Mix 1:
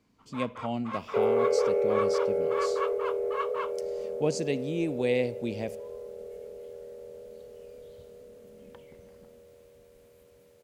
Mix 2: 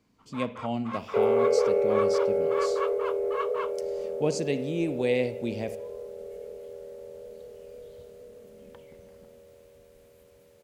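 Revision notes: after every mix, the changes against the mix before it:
speech: send +8.0 dB; second sound: send +11.0 dB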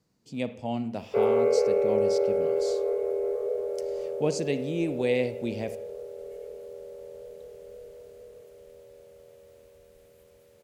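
first sound: muted

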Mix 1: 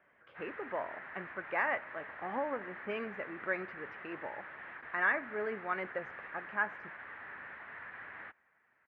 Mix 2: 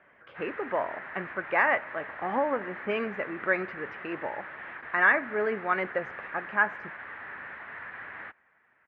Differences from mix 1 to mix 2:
speech +8.5 dB; background +6.0 dB

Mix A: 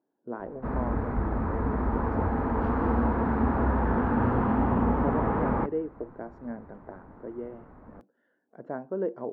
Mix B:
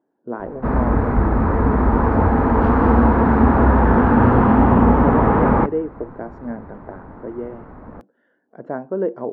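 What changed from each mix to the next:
speech +8.0 dB; background +11.5 dB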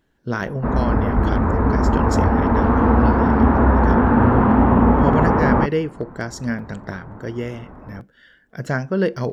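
speech: remove Chebyshev band-pass 280–890 Hz, order 2; reverb: off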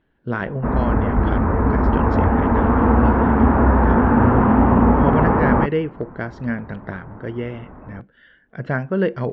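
master: add low-pass 3.2 kHz 24 dB/octave

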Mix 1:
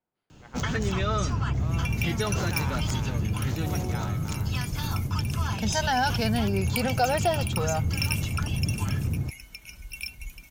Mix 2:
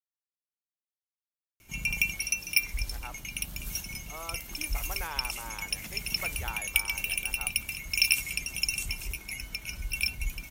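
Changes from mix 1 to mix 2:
speech: entry +2.50 s; first sound: muted; second sound +6.5 dB

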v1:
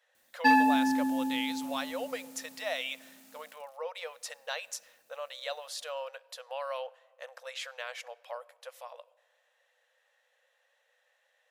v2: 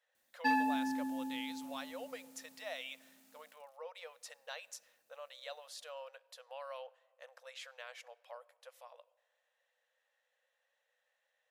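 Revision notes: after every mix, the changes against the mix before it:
speech -9.5 dB; background -9.0 dB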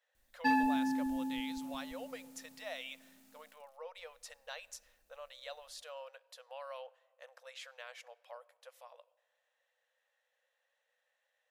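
background: add bass shelf 430 Hz +4 dB; master: remove high-pass 160 Hz 12 dB/octave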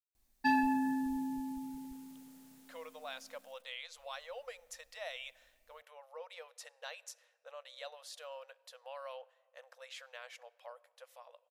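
speech: entry +2.35 s

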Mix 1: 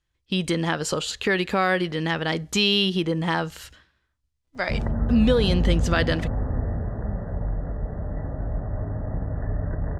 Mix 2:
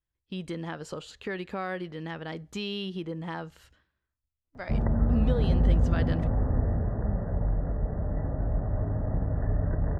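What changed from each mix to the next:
speech -10.5 dB; master: add treble shelf 2.3 kHz -9 dB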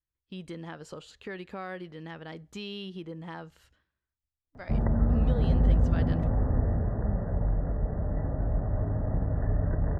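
speech -5.0 dB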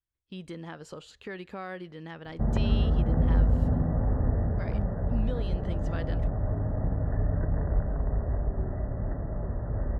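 background: entry -2.30 s

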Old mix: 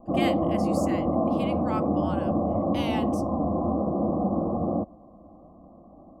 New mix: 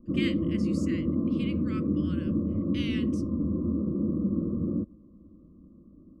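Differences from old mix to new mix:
speech: add distance through air 70 m; master: add Butterworth band-stop 780 Hz, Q 0.56

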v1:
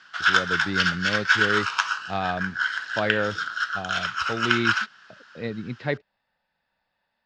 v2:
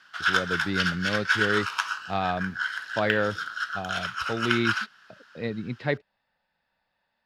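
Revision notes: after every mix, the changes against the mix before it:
background -4.0 dB; master: remove steep low-pass 7.8 kHz 36 dB/octave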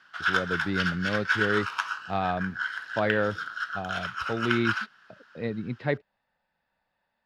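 master: add treble shelf 3.1 kHz -8.5 dB

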